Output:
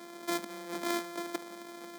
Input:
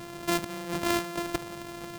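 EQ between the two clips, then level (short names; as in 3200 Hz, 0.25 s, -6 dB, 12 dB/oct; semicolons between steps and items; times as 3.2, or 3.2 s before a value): steep high-pass 200 Hz 48 dB/oct; Butterworth band-stop 2800 Hz, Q 7.5; -5.5 dB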